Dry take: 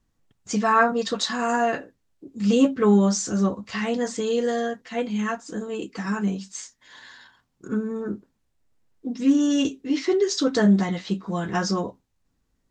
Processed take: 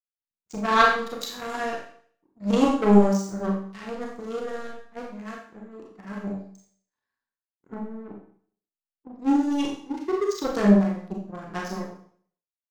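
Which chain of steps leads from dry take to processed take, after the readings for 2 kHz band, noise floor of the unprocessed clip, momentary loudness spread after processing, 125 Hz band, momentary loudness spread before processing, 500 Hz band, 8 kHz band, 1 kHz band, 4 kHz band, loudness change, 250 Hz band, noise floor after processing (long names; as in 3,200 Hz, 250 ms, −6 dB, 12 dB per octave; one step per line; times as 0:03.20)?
−0.5 dB, −72 dBFS, 21 LU, can't be measured, 14 LU, −2.5 dB, −10.5 dB, −0.5 dB, −5.0 dB, −1.0 dB, −2.0 dB, below −85 dBFS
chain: adaptive Wiener filter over 15 samples
power curve on the samples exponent 2
four-comb reverb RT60 0.54 s, combs from 28 ms, DRR −1 dB
level +2.5 dB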